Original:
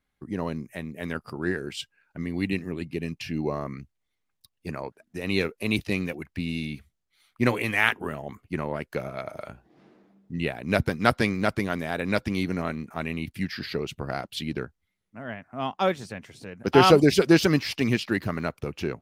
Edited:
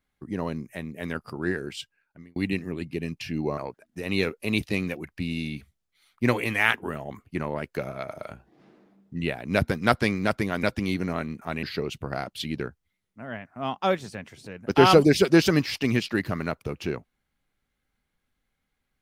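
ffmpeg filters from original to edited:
-filter_complex "[0:a]asplit=5[s0][s1][s2][s3][s4];[s0]atrim=end=2.36,asetpts=PTS-STARTPTS,afade=t=out:st=1.64:d=0.72[s5];[s1]atrim=start=2.36:end=3.582,asetpts=PTS-STARTPTS,afade=t=in:d=0.004:c=hsin[s6];[s2]atrim=start=4.758:end=11.812[s7];[s3]atrim=start=12.118:end=13.122[s8];[s4]atrim=start=13.598[s9];[s5][s6]concat=n=2:v=0:a=1[s10];[s10][s7]acrossfade=d=0.004:c1=hsin:c2=hsin[s11];[s11][s8]acrossfade=d=0.004:c1=hsin:c2=hsin[s12];[s12][s9]acrossfade=d=0.004:c1=hsin:c2=hsin"

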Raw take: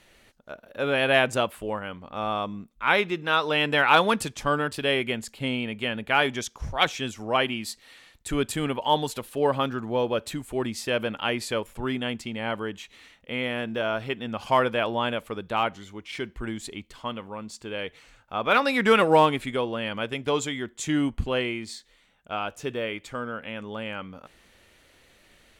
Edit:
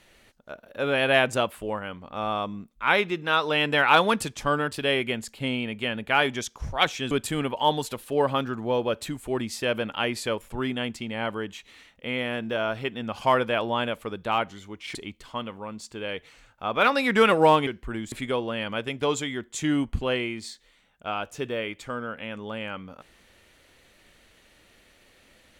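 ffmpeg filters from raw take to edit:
-filter_complex "[0:a]asplit=5[s0][s1][s2][s3][s4];[s0]atrim=end=7.112[s5];[s1]atrim=start=8.358:end=16.202[s6];[s2]atrim=start=16.648:end=19.372[s7];[s3]atrim=start=16.198:end=16.652[s8];[s4]atrim=start=19.368[s9];[s5][s6]acrossfade=d=0.004:c1=hsin:c2=hsin[s10];[s10][s7]acrossfade=d=0.004:c1=hsin:c2=hsin[s11];[s11][s8]acrossfade=d=0.004:c1=hsin:c2=hsin[s12];[s12][s9]acrossfade=d=0.004:c1=hsin:c2=hsin"

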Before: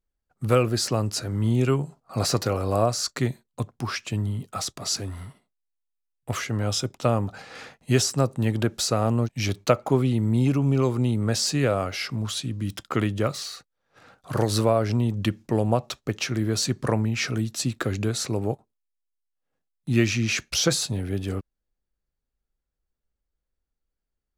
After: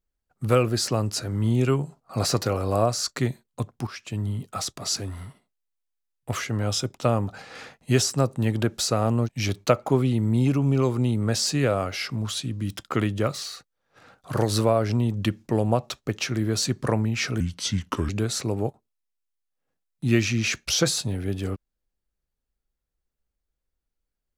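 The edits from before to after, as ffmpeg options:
-filter_complex "[0:a]asplit=4[s0][s1][s2][s3];[s0]atrim=end=3.87,asetpts=PTS-STARTPTS,afade=t=out:st=3.866:d=0.004:c=hsin:silence=0.237137[s4];[s1]atrim=start=3.87:end=17.404,asetpts=PTS-STARTPTS,afade=t=in:d=0.44:silence=0.237137[s5];[s2]atrim=start=17.4:end=17.94,asetpts=PTS-STARTPTS,asetrate=34398,aresample=44100[s6];[s3]atrim=start=17.936[s7];[s4][s5]concat=n=2:v=0:a=1[s8];[s8][s6]acrossfade=d=0.004:c1=hsin:c2=hsin[s9];[s9][s7]acrossfade=d=0.004:c1=hsin:c2=hsin"

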